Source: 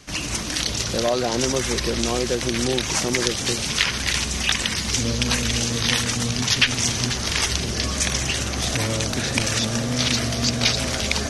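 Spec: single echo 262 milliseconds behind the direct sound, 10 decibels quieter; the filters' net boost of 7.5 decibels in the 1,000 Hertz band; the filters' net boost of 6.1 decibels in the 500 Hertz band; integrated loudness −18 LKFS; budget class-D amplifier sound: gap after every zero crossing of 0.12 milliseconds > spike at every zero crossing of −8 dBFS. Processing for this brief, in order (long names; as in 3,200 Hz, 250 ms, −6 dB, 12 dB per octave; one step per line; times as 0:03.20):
parametric band 500 Hz +5.5 dB
parametric band 1,000 Hz +8 dB
single-tap delay 262 ms −10 dB
gap after every zero crossing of 0.12 ms
spike at every zero crossing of −8 dBFS
level −0.5 dB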